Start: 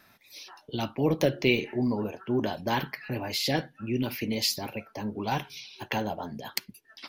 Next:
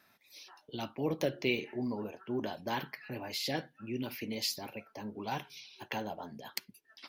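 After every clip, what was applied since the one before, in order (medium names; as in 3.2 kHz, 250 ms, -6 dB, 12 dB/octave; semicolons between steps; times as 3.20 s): bass shelf 89 Hz -11.5 dB; trim -7 dB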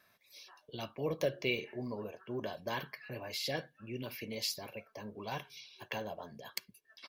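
comb 1.8 ms, depth 45%; trim -2.5 dB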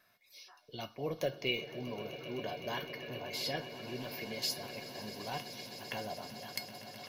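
feedback comb 720 Hz, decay 0.19 s, harmonics all, mix 80%; echo with a slow build-up 128 ms, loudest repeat 8, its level -17 dB; trim +11 dB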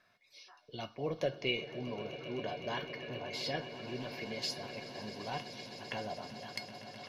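distance through air 75 m; trim +1 dB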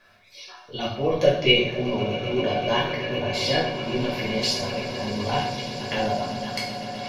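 reverberation RT60 0.65 s, pre-delay 3 ms, DRR -5.5 dB; trim +8 dB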